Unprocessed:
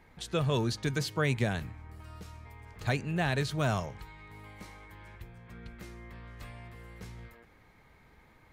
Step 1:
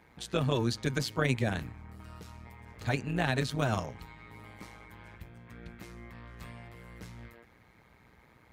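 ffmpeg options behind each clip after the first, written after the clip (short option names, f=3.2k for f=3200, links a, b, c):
-af "tremolo=f=120:d=0.788,highpass=51,volume=3.5dB"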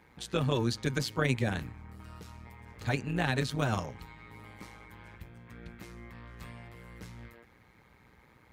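-af "bandreject=f=660:w=12"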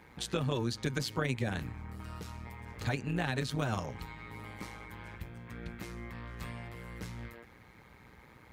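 -af "acompressor=threshold=-36dB:ratio=2.5,volume=4dB"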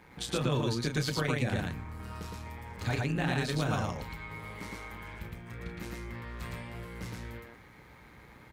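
-af "aecho=1:1:32.07|113.7:0.447|0.891"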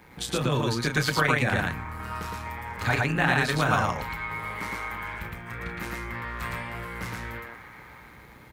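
-filter_complex "[0:a]highshelf=f=11k:g=8,acrossover=split=880|2100[a][b][c];[b]dynaudnorm=f=130:g=11:m=11.5dB[d];[a][d][c]amix=inputs=3:normalize=0,volume=3.5dB"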